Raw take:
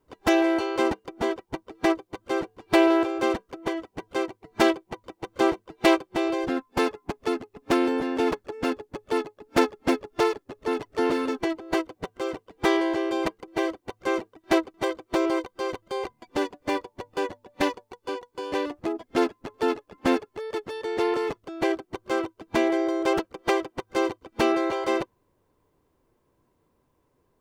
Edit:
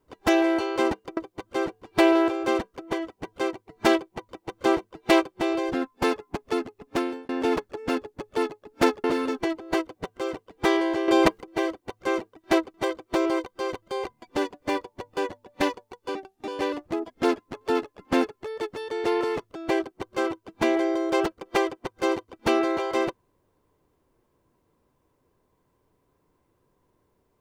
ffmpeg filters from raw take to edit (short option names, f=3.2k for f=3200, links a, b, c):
-filter_complex "[0:a]asplit=8[a][b][c][d][e][f][g][h];[a]atrim=end=1.172[i];[b]atrim=start=1.918:end=8.04,asetpts=PTS-STARTPTS,afade=t=out:st=5.642:d=0.48[j];[c]atrim=start=8.04:end=9.792,asetpts=PTS-STARTPTS,afade=t=in:d=0.004:c=hsin[k];[d]atrim=start=11.038:end=13.082[l];[e]atrim=start=13.078:end=13.422,asetpts=PTS-STARTPTS,volume=8dB[m];[f]atrim=start=13.418:end=18.154[n];[g]atrim=start=18.15:end=18.41,asetpts=PTS-STARTPTS,asetrate=34839,aresample=44100[o];[h]atrim=start=18.406[p];[j][k]concat=n=2:v=0:a=1[q];[i][q]acrossfade=d=0.004:c1=hsin:c2=hsin[r];[r][l]acrossfade=d=0.004:c1=hsin:c2=hsin[s];[s][m]acrossfade=d=0.004:c1=hsin:c2=hsin[t];[t][n]acrossfade=d=0.004:c1=hsin:c2=hsin[u];[u][o]acrossfade=d=0.004:c1=hsin:c2=hsin[v];[v][p]acrossfade=d=0.004:c1=hsin:c2=hsin"